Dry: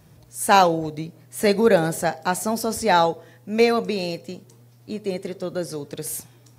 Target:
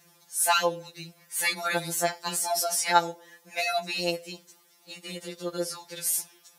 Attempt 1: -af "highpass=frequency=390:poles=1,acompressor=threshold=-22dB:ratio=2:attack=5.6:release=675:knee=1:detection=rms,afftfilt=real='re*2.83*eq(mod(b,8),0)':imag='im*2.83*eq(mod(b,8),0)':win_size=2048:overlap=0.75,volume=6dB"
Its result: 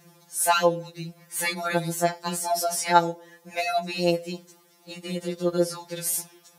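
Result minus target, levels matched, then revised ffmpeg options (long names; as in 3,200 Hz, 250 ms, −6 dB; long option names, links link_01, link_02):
500 Hz band +4.0 dB
-af "highpass=frequency=1500:poles=1,acompressor=threshold=-22dB:ratio=2:attack=5.6:release=675:knee=1:detection=rms,afftfilt=real='re*2.83*eq(mod(b,8),0)':imag='im*2.83*eq(mod(b,8),0)':win_size=2048:overlap=0.75,volume=6dB"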